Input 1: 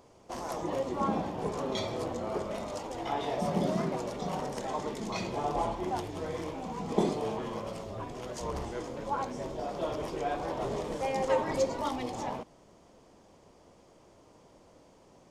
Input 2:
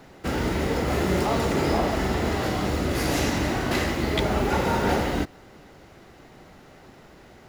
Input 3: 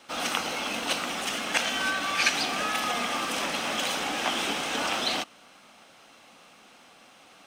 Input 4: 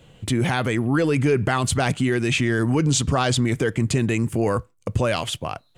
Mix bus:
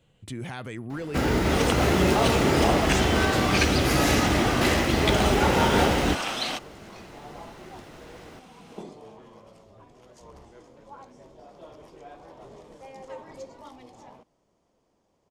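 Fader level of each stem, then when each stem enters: −13.0, +2.0, −1.5, −14.0 decibels; 1.80, 0.90, 1.35, 0.00 seconds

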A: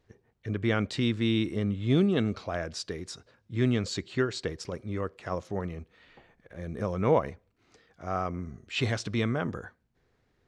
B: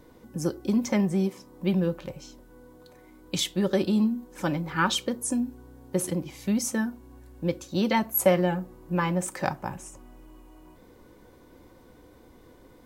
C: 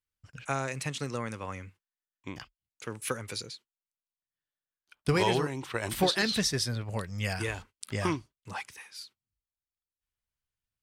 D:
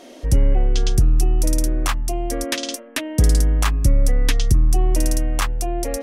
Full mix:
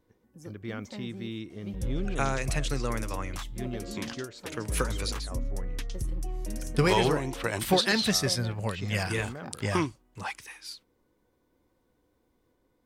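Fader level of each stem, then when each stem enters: −11.0, −18.0, +2.5, −17.5 decibels; 0.00, 0.00, 1.70, 1.50 seconds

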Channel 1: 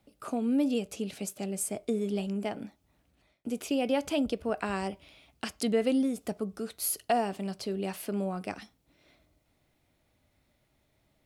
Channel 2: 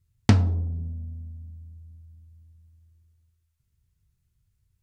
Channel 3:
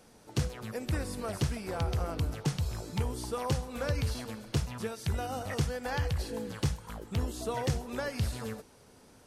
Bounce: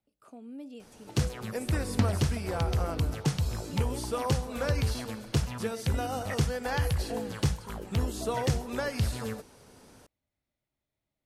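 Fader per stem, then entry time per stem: −16.5, −8.5, +3.0 decibels; 0.00, 1.70, 0.80 seconds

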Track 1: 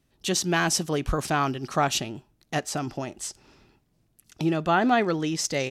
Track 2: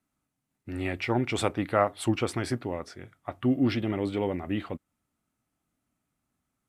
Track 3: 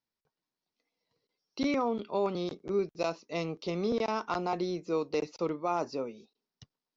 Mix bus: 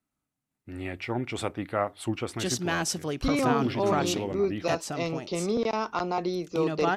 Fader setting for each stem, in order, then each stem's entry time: −5.0, −4.0, +3.0 decibels; 2.15, 0.00, 1.65 seconds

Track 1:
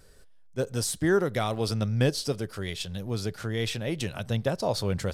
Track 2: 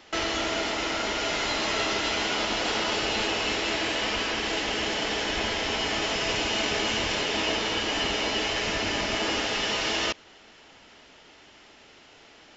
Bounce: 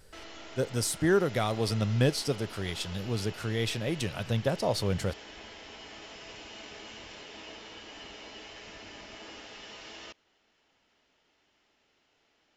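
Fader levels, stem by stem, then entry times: −1.0, −19.0 decibels; 0.00, 0.00 seconds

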